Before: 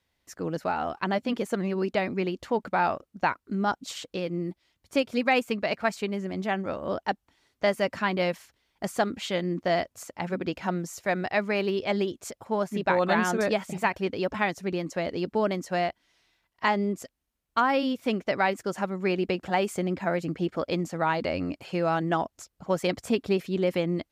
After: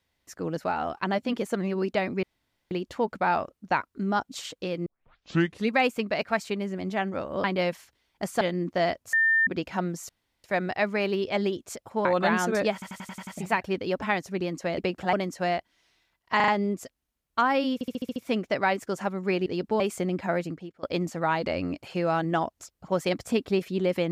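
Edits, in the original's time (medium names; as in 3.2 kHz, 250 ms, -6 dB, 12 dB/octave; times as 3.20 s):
2.23 s: insert room tone 0.48 s
4.38 s: tape start 0.88 s
6.96–8.05 s: delete
9.02–9.31 s: delete
10.03–10.37 s: bleep 1.8 kHz -18.5 dBFS
10.99 s: insert room tone 0.35 s
12.60–12.91 s: delete
13.59 s: stutter 0.09 s, 7 plays
15.10–15.44 s: swap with 19.23–19.58 s
16.67 s: stutter 0.04 s, 4 plays
17.93 s: stutter 0.07 s, 7 plays
20.20–20.61 s: fade out quadratic, to -22.5 dB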